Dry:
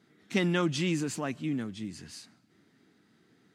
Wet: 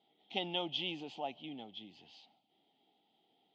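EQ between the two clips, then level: double band-pass 1600 Hz, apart 2 oct; air absorption 220 m; bell 1100 Hz -10 dB 0.42 oct; +9.5 dB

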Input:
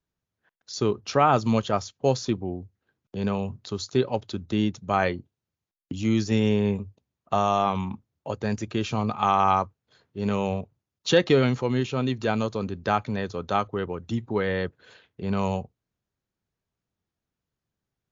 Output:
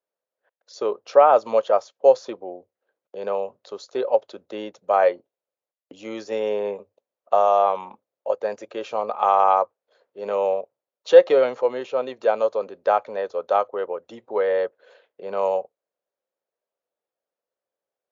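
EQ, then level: dynamic EQ 990 Hz, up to +4 dB, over -37 dBFS, Q 1.1; resonant high-pass 540 Hz, resonance Q 4.9; high shelf 3400 Hz -8 dB; -3.0 dB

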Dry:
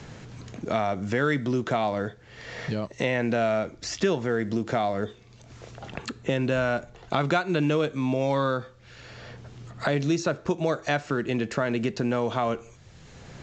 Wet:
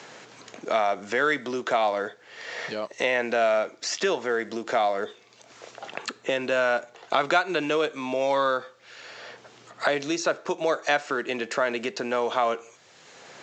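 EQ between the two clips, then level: HPF 480 Hz 12 dB/oct; +4.0 dB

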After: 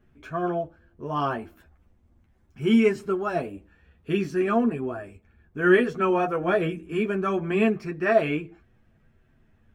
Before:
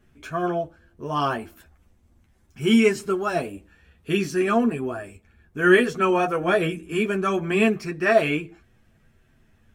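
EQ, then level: bell 10000 Hz -12 dB 2.6 oct; -1.5 dB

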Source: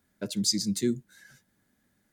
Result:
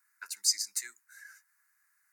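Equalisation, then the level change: HPF 1100 Hz 24 dB/oct; fixed phaser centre 1400 Hz, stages 4; +4.5 dB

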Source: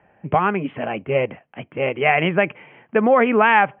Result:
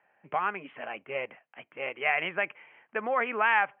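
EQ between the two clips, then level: band-pass 1800 Hz, Q 0.73; -7.0 dB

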